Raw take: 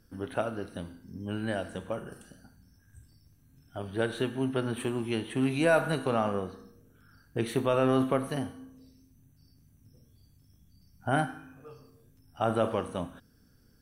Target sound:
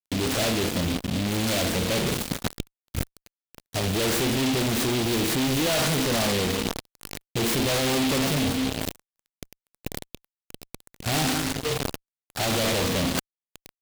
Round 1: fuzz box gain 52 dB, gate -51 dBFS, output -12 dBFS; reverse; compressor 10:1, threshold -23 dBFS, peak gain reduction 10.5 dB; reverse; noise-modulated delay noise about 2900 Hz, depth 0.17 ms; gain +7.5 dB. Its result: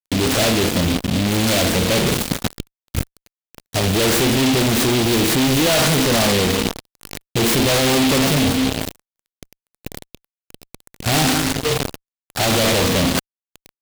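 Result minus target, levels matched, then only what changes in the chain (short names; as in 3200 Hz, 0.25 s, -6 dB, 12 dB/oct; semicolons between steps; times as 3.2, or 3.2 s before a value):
compressor: peak gain reduction -7.5 dB
change: compressor 10:1, threshold -31.5 dBFS, peak gain reduction 18 dB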